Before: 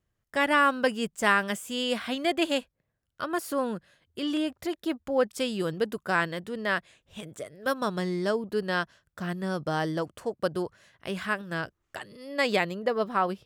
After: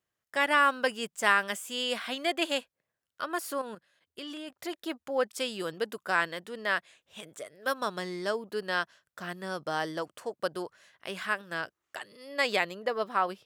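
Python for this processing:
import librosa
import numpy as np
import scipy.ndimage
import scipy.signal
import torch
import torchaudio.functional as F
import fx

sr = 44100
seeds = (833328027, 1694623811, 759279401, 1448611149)

y = fx.highpass(x, sr, hz=620.0, slope=6)
y = fx.level_steps(y, sr, step_db=10, at=(3.57, 4.59))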